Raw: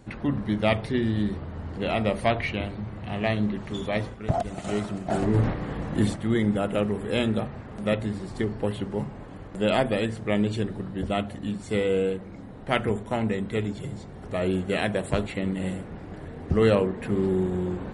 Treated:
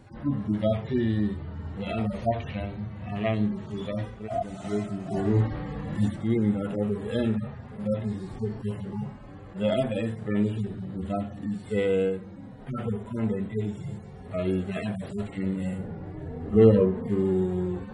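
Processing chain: harmonic-percussive separation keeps harmonic; 15.78–17.08 s: tilt shelf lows +5 dB, about 1.4 kHz

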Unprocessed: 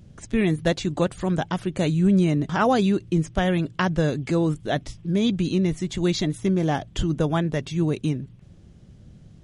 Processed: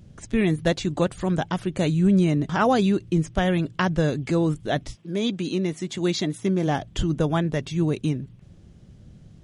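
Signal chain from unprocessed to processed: 4.94–6.66 s: high-pass 290 Hz -> 140 Hz 12 dB/octave

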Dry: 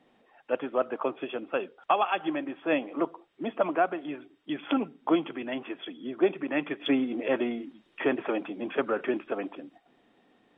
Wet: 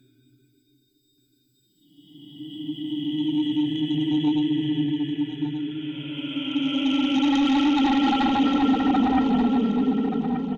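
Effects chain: expander on every frequency bin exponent 2; ten-band graphic EQ 125 Hz +8 dB, 500 Hz +4 dB, 1 kHz -9 dB, 2 kHz -5 dB; upward compressor, threshold -31 dBFS; Paulstretch 17×, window 0.25 s, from 4.27 s; sine folder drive 7 dB, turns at -20 dBFS; feedback delay 1179 ms, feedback 24%, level -9.5 dB; trim +3 dB

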